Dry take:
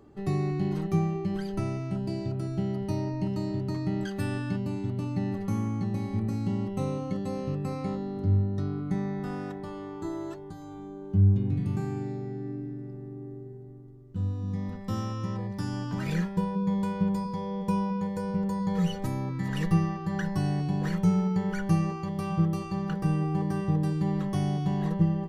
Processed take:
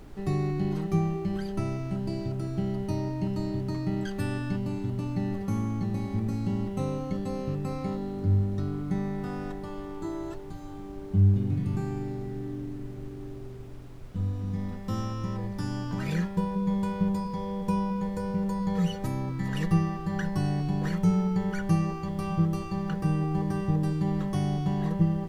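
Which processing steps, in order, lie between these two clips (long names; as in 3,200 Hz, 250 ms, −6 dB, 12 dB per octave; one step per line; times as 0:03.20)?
background noise brown −43 dBFS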